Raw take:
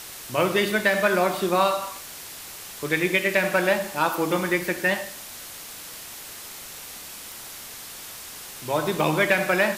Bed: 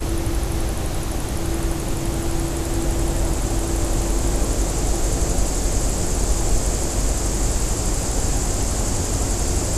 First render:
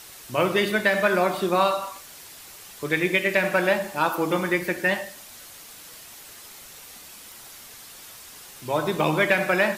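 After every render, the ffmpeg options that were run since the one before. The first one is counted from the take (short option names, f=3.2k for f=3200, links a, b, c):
-af "afftdn=nr=6:nf=-40"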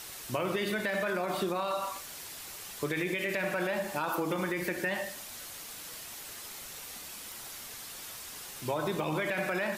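-af "alimiter=limit=-17dB:level=0:latency=1:release=30,acompressor=threshold=-28dB:ratio=6"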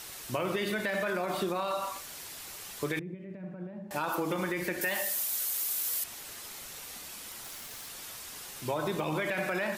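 -filter_complex "[0:a]asettb=1/sr,asplit=3[a][b][c];[a]atrim=end=2.994[d];[b]atrim=start=2.99:end=3.91,asetpts=PTS-STARTPTS,afade=t=in:d=0.004:c=qsin,afade=t=out:st=0.916:d=0.004:c=qsin,bandpass=f=170:t=q:w=1.9[e];[c]atrim=start=3.906[f];[d][e]acrossfade=d=0.004:c1=hsin:c2=qsin[g];[g][f]acrossfade=d=0.004:c1=qsin:c2=hsin,asettb=1/sr,asplit=3[h][i][j];[h]atrim=end=4.814[k];[i]atrim=start=4.81:end=6.04,asetpts=PTS-STARTPTS,afade=t=in:d=0.004:c=qsin,afade=t=out:st=1.226:d=0.004:c=qsin,aemphasis=mode=production:type=bsi[l];[j]atrim=start=6.036[m];[k][l]acrossfade=d=0.004:c1=hsin:c2=qsin[n];[n][m]acrossfade=d=0.004:c1=qsin:c2=hsin,asplit=3[o][p][q];[o]afade=t=out:st=7.43:d=0.02[r];[p]acrusher=bits=6:mix=0:aa=0.5,afade=t=in:st=7.43:d=0.02,afade=t=out:st=7.88:d=0.02[s];[q]afade=t=in:st=7.88:d=0.02[t];[r][s][t]amix=inputs=3:normalize=0"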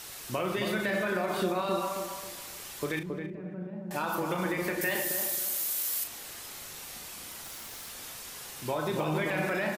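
-filter_complex "[0:a]asplit=2[a][b];[b]adelay=38,volume=-8dB[c];[a][c]amix=inputs=2:normalize=0,asplit=2[d][e];[e]adelay=271,lowpass=f=840:p=1,volume=-3dB,asplit=2[f][g];[g]adelay=271,lowpass=f=840:p=1,volume=0.36,asplit=2[h][i];[i]adelay=271,lowpass=f=840:p=1,volume=0.36,asplit=2[j][k];[k]adelay=271,lowpass=f=840:p=1,volume=0.36,asplit=2[l][m];[m]adelay=271,lowpass=f=840:p=1,volume=0.36[n];[d][f][h][j][l][n]amix=inputs=6:normalize=0"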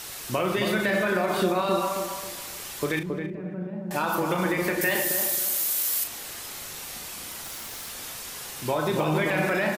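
-af "volume=5.5dB"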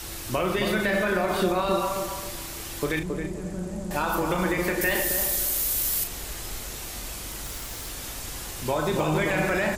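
-filter_complex "[1:a]volume=-19dB[a];[0:a][a]amix=inputs=2:normalize=0"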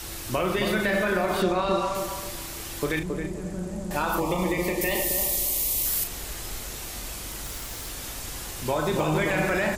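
-filter_complex "[0:a]asettb=1/sr,asplit=3[a][b][c];[a]atrim=end=1.424[d];[b]atrim=start=1.42:end=1.95,asetpts=PTS-STARTPTS,afade=t=in:d=0.004:c=qsin,afade=t=out:st=0.526:d=0.004:c=qsin,lowpass=6.9k[e];[c]atrim=start=1.946[f];[d][e]acrossfade=d=0.004:c1=hsin:c2=qsin[g];[g][f]acrossfade=d=0.004:c1=qsin:c2=hsin,asettb=1/sr,asplit=3[h][i][j];[h]atrim=end=4.204[k];[i]atrim=start=4.2:end=5.86,asetpts=PTS-STARTPTS,afade=t=in:d=0.004:c=qsin,afade=t=out:st=1.656:d=0.004:c=qsin,asuperstop=centerf=1500:order=4:qfactor=2[l];[j]atrim=start=5.856[m];[k][l]acrossfade=d=0.004:c1=hsin:c2=qsin[n];[n][m]acrossfade=d=0.004:c1=qsin:c2=hsin"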